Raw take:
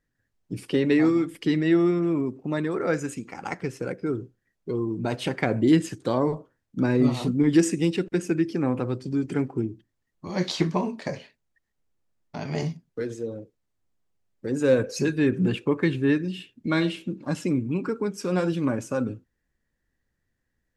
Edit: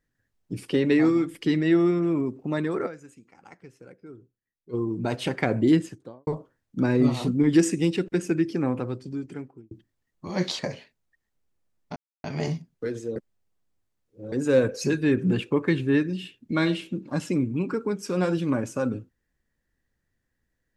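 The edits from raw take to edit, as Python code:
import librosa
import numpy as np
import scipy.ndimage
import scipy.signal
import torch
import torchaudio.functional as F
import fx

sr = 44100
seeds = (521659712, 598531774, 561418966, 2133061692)

y = fx.studio_fade_out(x, sr, start_s=5.6, length_s=0.67)
y = fx.edit(y, sr, fx.fade_down_up(start_s=2.86, length_s=1.88, db=-17.0, fade_s=0.13, curve='exp'),
    fx.fade_out_span(start_s=8.56, length_s=1.15),
    fx.cut(start_s=10.59, length_s=0.43),
    fx.insert_silence(at_s=12.39, length_s=0.28),
    fx.reverse_span(start_s=13.31, length_s=1.16), tone=tone)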